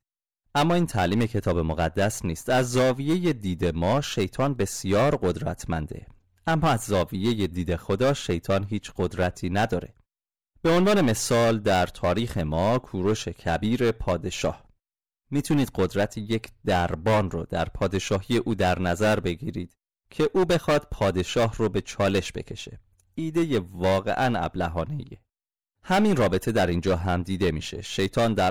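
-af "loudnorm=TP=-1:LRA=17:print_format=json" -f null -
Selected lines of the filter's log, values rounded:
"input_i" : "-25.0",
"input_tp" : "-16.2",
"input_lra" : "2.6",
"input_thresh" : "-35.4",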